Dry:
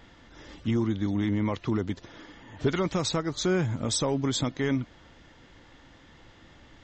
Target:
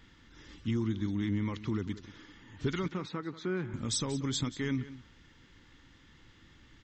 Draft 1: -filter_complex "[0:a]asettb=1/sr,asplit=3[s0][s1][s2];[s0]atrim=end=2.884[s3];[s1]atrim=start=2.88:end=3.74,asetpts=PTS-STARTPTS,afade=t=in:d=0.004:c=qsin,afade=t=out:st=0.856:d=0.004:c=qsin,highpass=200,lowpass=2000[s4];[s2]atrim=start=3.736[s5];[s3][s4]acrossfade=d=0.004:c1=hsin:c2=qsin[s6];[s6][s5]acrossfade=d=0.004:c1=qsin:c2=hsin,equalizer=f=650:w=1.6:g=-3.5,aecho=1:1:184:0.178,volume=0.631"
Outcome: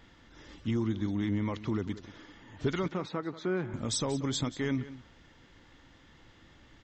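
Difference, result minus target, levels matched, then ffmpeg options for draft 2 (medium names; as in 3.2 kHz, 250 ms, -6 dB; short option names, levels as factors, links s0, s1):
500 Hz band +2.5 dB
-filter_complex "[0:a]asettb=1/sr,asplit=3[s0][s1][s2];[s0]atrim=end=2.884[s3];[s1]atrim=start=2.88:end=3.74,asetpts=PTS-STARTPTS,afade=t=in:d=0.004:c=qsin,afade=t=out:st=0.856:d=0.004:c=qsin,highpass=200,lowpass=2000[s4];[s2]atrim=start=3.736[s5];[s3][s4]acrossfade=d=0.004:c1=hsin:c2=qsin[s6];[s6][s5]acrossfade=d=0.004:c1=qsin:c2=hsin,equalizer=f=650:w=1.6:g=-14.5,aecho=1:1:184:0.178,volume=0.631"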